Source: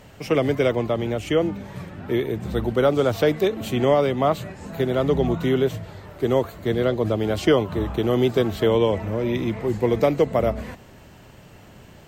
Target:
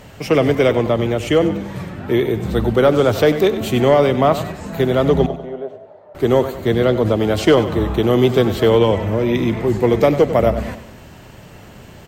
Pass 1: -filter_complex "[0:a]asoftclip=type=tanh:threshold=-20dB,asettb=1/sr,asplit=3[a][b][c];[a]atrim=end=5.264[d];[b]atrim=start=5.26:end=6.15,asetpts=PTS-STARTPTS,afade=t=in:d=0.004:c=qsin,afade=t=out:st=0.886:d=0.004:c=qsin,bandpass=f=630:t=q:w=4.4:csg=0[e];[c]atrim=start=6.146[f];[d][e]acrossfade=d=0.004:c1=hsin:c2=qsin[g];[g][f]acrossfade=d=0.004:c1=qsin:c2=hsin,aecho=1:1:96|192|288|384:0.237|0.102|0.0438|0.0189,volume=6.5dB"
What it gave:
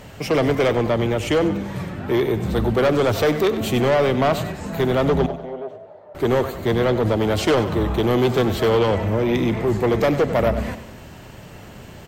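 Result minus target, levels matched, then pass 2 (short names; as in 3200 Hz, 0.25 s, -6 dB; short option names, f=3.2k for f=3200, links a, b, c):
soft clip: distortion +13 dB
-filter_complex "[0:a]asoftclip=type=tanh:threshold=-9dB,asettb=1/sr,asplit=3[a][b][c];[a]atrim=end=5.264[d];[b]atrim=start=5.26:end=6.15,asetpts=PTS-STARTPTS,afade=t=in:d=0.004:c=qsin,afade=t=out:st=0.886:d=0.004:c=qsin,bandpass=f=630:t=q:w=4.4:csg=0[e];[c]atrim=start=6.146[f];[d][e]acrossfade=d=0.004:c1=hsin:c2=qsin[g];[g][f]acrossfade=d=0.004:c1=qsin:c2=hsin,aecho=1:1:96|192|288|384:0.237|0.102|0.0438|0.0189,volume=6.5dB"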